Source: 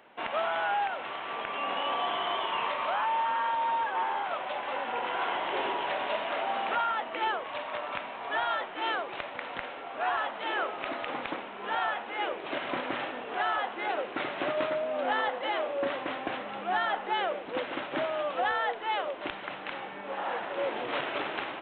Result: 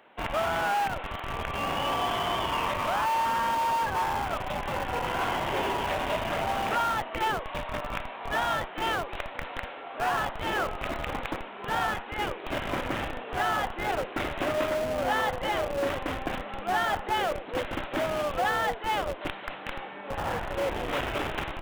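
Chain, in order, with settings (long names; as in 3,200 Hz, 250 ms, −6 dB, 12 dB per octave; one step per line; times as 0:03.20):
0:11.86–0:12.41: dynamic equaliser 640 Hz, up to −6 dB, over −47 dBFS, Q 3.9
in parallel at −4 dB: comparator with hysteresis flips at −29 dBFS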